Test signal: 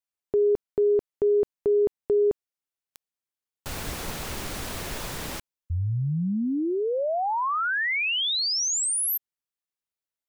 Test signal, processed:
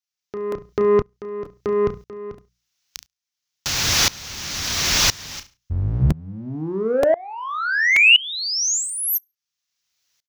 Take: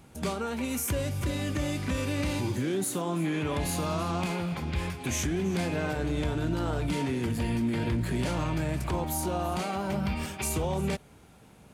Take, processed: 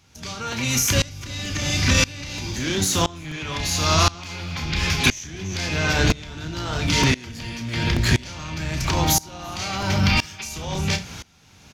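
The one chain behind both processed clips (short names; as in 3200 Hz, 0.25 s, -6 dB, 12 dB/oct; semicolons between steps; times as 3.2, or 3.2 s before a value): octaver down 1 oct, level -1 dB; HPF 67 Hz 6 dB/oct; soft clip -18.5 dBFS; passive tone stack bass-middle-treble 5-5-5; compressor 3:1, threshold -46 dBFS; resonant high shelf 7300 Hz -7.5 dB, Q 3; notches 60/120/180 Hz; doubler 32 ms -10 dB; feedback echo 70 ms, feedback 19%, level -18.5 dB; crackling interface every 0.93 s, samples 128, repeat, from 0.52; maximiser +35 dB; dB-ramp tremolo swelling 0.98 Hz, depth 24 dB; gain -2 dB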